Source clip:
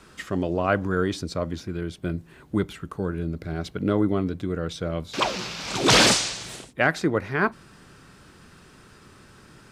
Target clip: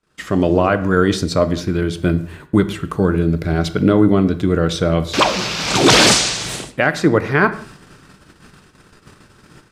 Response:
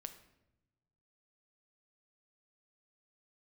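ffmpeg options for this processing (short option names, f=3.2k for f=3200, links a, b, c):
-filter_complex "[0:a]agate=range=-28dB:threshold=-48dB:ratio=16:detection=peak,alimiter=limit=-14dB:level=0:latency=1:release=355,dynaudnorm=f=110:g=5:m=11dB,asplit=2[a][b];[1:a]atrim=start_sample=2205,afade=t=out:st=0.25:d=0.01,atrim=end_sample=11466[c];[b][c]afir=irnorm=-1:irlink=0,volume=11dB[d];[a][d]amix=inputs=2:normalize=0,volume=-8dB"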